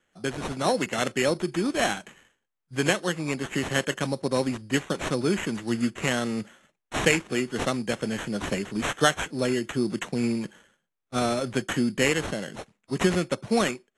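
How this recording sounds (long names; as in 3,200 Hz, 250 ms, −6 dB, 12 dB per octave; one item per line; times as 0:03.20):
aliases and images of a low sample rate 4,800 Hz, jitter 0%
AAC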